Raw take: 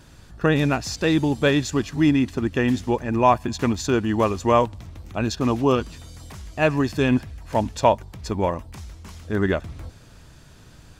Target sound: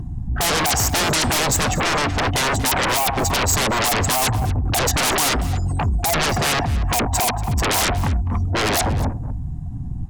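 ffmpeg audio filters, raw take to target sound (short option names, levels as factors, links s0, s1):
-filter_complex "[0:a]afftdn=nr=28:nf=-41,firequalizer=gain_entry='entry(110,0);entry(170,-4);entry(240,1);entry(460,-28);entry(660,15);entry(1300,-8);entry(4200,-16);entry(6400,-6)':delay=0.05:min_phase=1,aresample=32000,aresample=44100,acrossover=split=460[s0][s1];[s0]acompressor=threshold=0.0447:ratio=3[s2];[s2][s1]amix=inputs=2:normalize=0,alimiter=limit=0.447:level=0:latency=1:release=401,asoftclip=type=hard:threshold=0.0794,acompressor=mode=upward:threshold=0.00398:ratio=2.5,aeval=exprs='0.0794*sin(PI/2*4.47*val(0)/0.0794)':c=same,asplit=2[s3][s4];[s4]adelay=256.6,volume=0.2,highshelf=f=4000:g=-5.77[s5];[s3][s5]amix=inputs=2:normalize=0,asetrate=48000,aresample=44100,aeval=exprs='val(0)+0.002*(sin(2*PI*60*n/s)+sin(2*PI*2*60*n/s)/2+sin(2*PI*3*60*n/s)/3+sin(2*PI*4*60*n/s)/4+sin(2*PI*5*60*n/s)/5)':c=same,adynamicequalizer=threshold=0.00891:dfrequency=5200:dqfactor=0.7:tfrequency=5200:tqfactor=0.7:attack=5:release=100:ratio=0.375:range=2:mode=boostabove:tftype=highshelf,volume=1.88"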